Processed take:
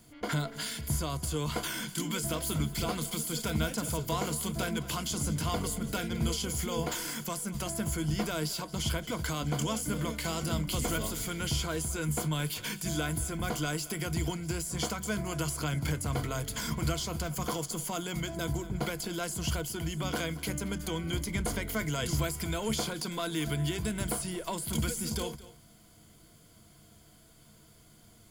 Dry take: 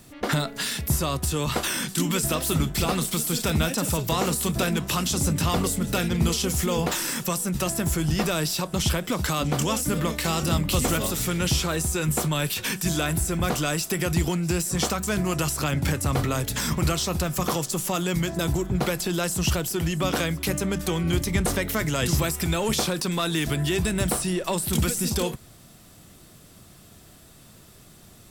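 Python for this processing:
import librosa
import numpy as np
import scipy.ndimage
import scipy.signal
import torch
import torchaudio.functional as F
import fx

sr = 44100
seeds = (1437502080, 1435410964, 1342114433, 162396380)

y = fx.ripple_eq(x, sr, per_octave=1.8, db=9)
y = y + 10.0 ** (-18.0 / 20.0) * np.pad(y, (int(225 * sr / 1000.0), 0))[:len(y)]
y = y * librosa.db_to_amplitude(-9.0)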